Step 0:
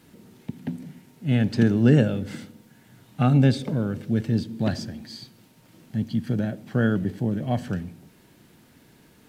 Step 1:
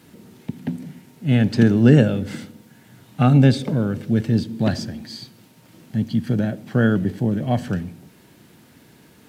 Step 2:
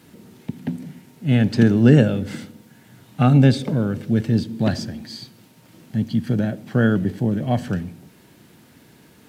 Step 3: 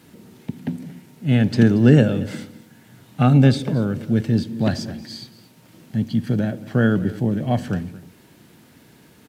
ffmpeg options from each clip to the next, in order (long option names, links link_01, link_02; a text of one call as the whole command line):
ffmpeg -i in.wav -af "highpass=59,volume=4.5dB" out.wav
ffmpeg -i in.wav -af anull out.wav
ffmpeg -i in.wav -af "aecho=1:1:229:0.119" out.wav